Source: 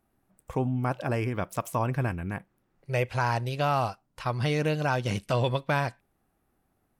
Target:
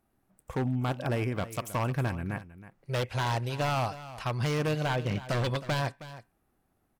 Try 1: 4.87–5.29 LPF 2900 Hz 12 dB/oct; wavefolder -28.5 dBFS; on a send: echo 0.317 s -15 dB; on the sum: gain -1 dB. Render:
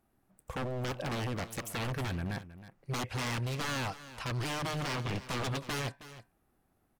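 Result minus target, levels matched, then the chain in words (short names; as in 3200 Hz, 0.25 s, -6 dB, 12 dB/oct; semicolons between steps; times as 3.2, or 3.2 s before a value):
wavefolder: distortion +15 dB
4.87–5.29 LPF 2900 Hz 12 dB/oct; wavefolder -21.5 dBFS; on a send: echo 0.317 s -15 dB; on the sum: gain -1 dB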